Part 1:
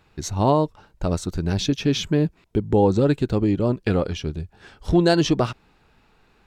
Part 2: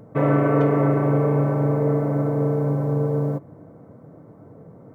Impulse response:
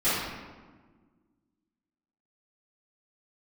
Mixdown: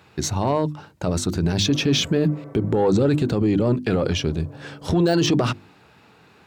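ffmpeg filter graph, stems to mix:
-filter_complex "[0:a]deesser=0.6,bandreject=f=50:t=h:w=6,bandreject=f=100:t=h:w=6,bandreject=f=150:t=h:w=6,bandreject=f=200:t=h:w=6,bandreject=f=250:t=h:w=6,bandreject=f=300:t=h:w=6,bandreject=f=350:t=h:w=6,acontrast=86,volume=0.5dB,asplit=2[a][b];[1:a]alimiter=limit=-17dB:level=0:latency=1,adelay=1500,volume=-18dB,asplit=3[c][d][e];[c]atrim=end=3.24,asetpts=PTS-STARTPTS,afade=t=out:st=3.236:d=0.004:c=hsin[f];[d]atrim=start=3.24:end=3.88,asetpts=PTS-STARTPTS,volume=0[g];[e]atrim=start=3.88,asetpts=PTS-STARTPTS,afade=t=in:d=0.004:c=hsin[h];[f][g][h]concat=n=3:v=0:a=1,asplit=2[i][j];[j]volume=-15.5dB[k];[b]apad=whole_len=284160[l];[i][l]sidechaingate=range=-33dB:threshold=-41dB:ratio=16:detection=peak[m];[2:a]atrim=start_sample=2205[n];[k][n]afir=irnorm=-1:irlink=0[o];[a][m][o]amix=inputs=3:normalize=0,highpass=f=85:w=0.5412,highpass=f=85:w=1.3066,alimiter=limit=-11dB:level=0:latency=1:release=24"

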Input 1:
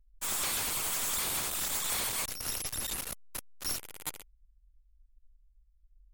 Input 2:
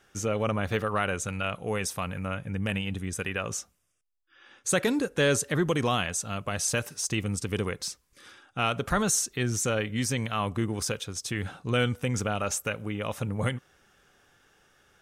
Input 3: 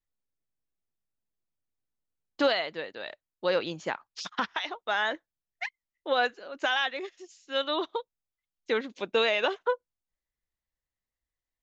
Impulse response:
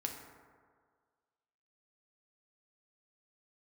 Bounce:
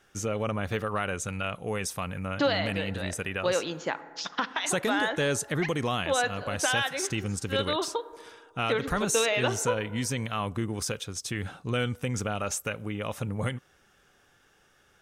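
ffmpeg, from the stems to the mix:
-filter_complex "[1:a]volume=-0.5dB[a];[2:a]volume=0.5dB,asplit=2[b][c];[c]volume=-8.5dB[d];[3:a]atrim=start_sample=2205[e];[d][e]afir=irnorm=-1:irlink=0[f];[a][b][f]amix=inputs=3:normalize=0,acompressor=threshold=-28dB:ratio=1.5"

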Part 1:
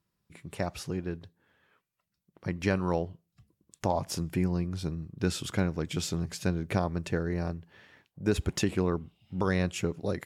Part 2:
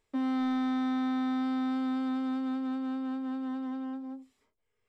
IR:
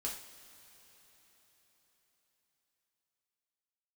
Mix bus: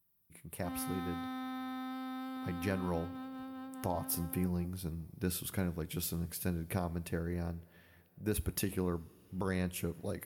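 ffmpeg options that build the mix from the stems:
-filter_complex "[0:a]lowshelf=f=130:g=3.5,volume=-9.5dB,asplit=2[a][b];[b]volume=-12.5dB[c];[1:a]highpass=f=500:p=1,adelay=500,volume=-5.5dB[d];[2:a]atrim=start_sample=2205[e];[c][e]afir=irnorm=-1:irlink=0[f];[a][d][f]amix=inputs=3:normalize=0,aexciter=amount=15.2:drive=2.9:freq=10k"

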